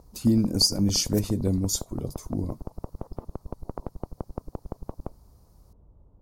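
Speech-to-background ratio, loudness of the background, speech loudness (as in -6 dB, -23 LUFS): 16.0 dB, -41.0 LUFS, -25.0 LUFS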